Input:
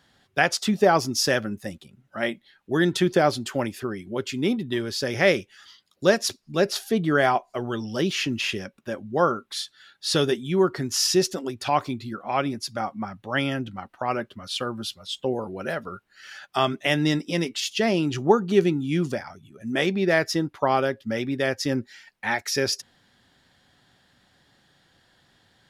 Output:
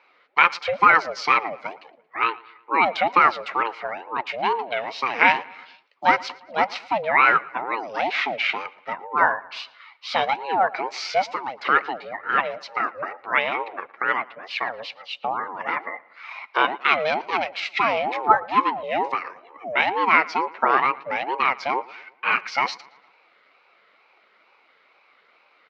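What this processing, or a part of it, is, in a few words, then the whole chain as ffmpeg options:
voice changer toy: -filter_complex "[0:a]asettb=1/sr,asplit=3[link_01][link_02][link_03];[link_01]atrim=end=18.354[link_04];[link_02]atrim=start=18.35:end=18.83,asetpts=PTS-STARTPTS,afade=type=in:duration=0.004:curve=qsin,afade=type=out:start_time=0.476:duration=0.004:curve=qsin,highpass=280[link_05];[link_03]atrim=start=18.826[link_06];[link_04][link_05]acrossfade=duration=0.004:curve1=hsin:curve2=qsin[link_07];[link_07][link_06]acrossfade=duration=0.004:curve1=qsin:curve2=hsin,aeval=exprs='val(0)*sin(2*PI*500*n/s+500*0.4/2.2*sin(2*PI*2.2*n/s))':channel_layout=same,highpass=490,equalizer=frequency=1300:width_type=q:width=4:gain=5,equalizer=frequency=2200:width_type=q:width=4:gain=7,equalizer=frequency=3400:width_type=q:width=4:gain=-6,lowpass=frequency=3700:width=0.5412,lowpass=frequency=3700:width=1.3066,asplit=2[link_08][link_09];[link_09]adelay=114,lowpass=frequency=4400:poles=1,volume=-21.5dB,asplit=2[link_10][link_11];[link_11]adelay=114,lowpass=frequency=4400:poles=1,volume=0.51,asplit=2[link_12][link_13];[link_13]adelay=114,lowpass=frequency=4400:poles=1,volume=0.51,asplit=2[link_14][link_15];[link_15]adelay=114,lowpass=frequency=4400:poles=1,volume=0.51[link_16];[link_08][link_10][link_12][link_14][link_16]amix=inputs=5:normalize=0,volume=5.5dB"

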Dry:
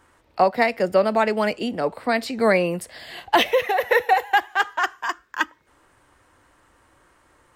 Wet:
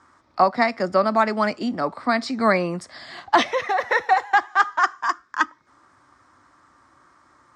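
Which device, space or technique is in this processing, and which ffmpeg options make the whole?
car door speaker: -af "highpass=90,equalizer=frequency=260:width_type=q:width=4:gain=4,equalizer=frequency=470:width_type=q:width=4:gain=-9,equalizer=frequency=1200:width_type=q:width=4:gain=9,equalizer=frequency=2800:width_type=q:width=4:gain=-10,equalizer=frequency=5300:width_type=q:width=4:gain=5,lowpass=frequency=7500:width=0.5412,lowpass=frequency=7500:width=1.3066"

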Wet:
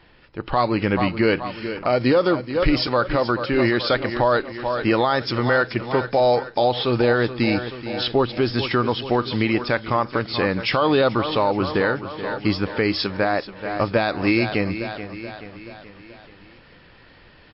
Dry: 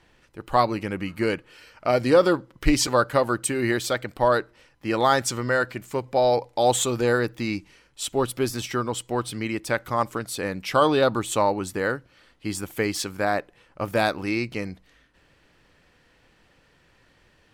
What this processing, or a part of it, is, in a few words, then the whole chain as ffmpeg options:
low-bitrate web radio: -af "aecho=1:1:430|860|1290|1720|2150:0.188|0.0998|0.0529|0.028|0.0149,dynaudnorm=framelen=240:gausssize=3:maxgain=4dB,alimiter=limit=-15dB:level=0:latency=1:release=223,volume=6.5dB" -ar 12000 -c:a libmp3lame -b:a 32k

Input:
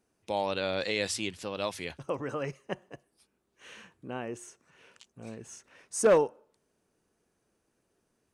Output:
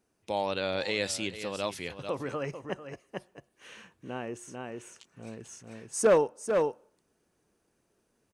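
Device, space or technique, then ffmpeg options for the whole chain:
ducked delay: -filter_complex "[0:a]asplit=3[link_01][link_02][link_03];[link_02]adelay=444,volume=-3dB[link_04];[link_03]apad=whole_len=387009[link_05];[link_04][link_05]sidechaincompress=threshold=-47dB:ratio=3:attack=21:release=224[link_06];[link_01][link_06]amix=inputs=2:normalize=0"

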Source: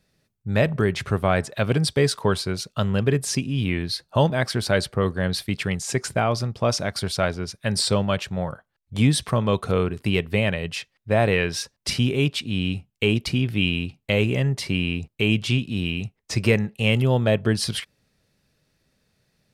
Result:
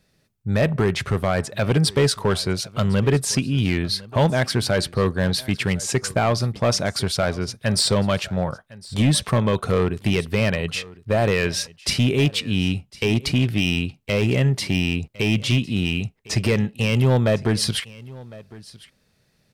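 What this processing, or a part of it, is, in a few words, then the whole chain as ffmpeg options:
limiter into clipper: -af "alimiter=limit=-10dB:level=0:latency=1,asoftclip=type=hard:threshold=-15.5dB,aecho=1:1:1056:0.0891,volume=3.5dB"

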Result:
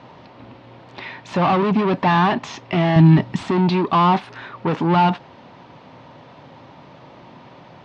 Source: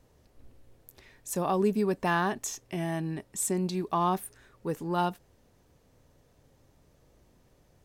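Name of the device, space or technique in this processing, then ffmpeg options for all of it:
overdrive pedal into a guitar cabinet: -filter_complex "[0:a]asplit=2[link_01][link_02];[link_02]highpass=frequency=720:poles=1,volume=30dB,asoftclip=type=tanh:threshold=-15dB[link_03];[link_01][link_03]amix=inputs=2:normalize=0,lowpass=frequency=2800:poles=1,volume=-6dB,highpass=83,equalizer=frequency=120:width_type=q:width=4:gain=7,equalizer=frequency=170:width_type=q:width=4:gain=6,equalizer=frequency=250:width_type=q:width=4:gain=4,equalizer=frequency=450:width_type=q:width=4:gain=-7,equalizer=frequency=940:width_type=q:width=4:gain=6,equalizer=frequency=1700:width_type=q:width=4:gain=-4,lowpass=frequency=4100:width=0.5412,lowpass=frequency=4100:width=1.3066,asettb=1/sr,asplit=3[link_04][link_05][link_06];[link_04]atrim=end=2.964[link_07];[link_05]atrim=start=2.96:end=3.43,asetpts=PTS-STARTPTS,afade=type=in:duration=0.004:curve=qsin,afade=type=out:start_time=0.466:duration=0.004:curve=qsin,bass=frequency=250:gain=12,treble=frequency=4000:gain=4[link_08];[link_06]atrim=start=3.426[link_09];[link_07][link_08]acrossfade=duration=0.004:curve1=hsin:curve2=qsin[link_10];[link_10][link_09]acrossfade=duration=0.004:curve1=qsin:curve2=hsin,volume=3.5dB"

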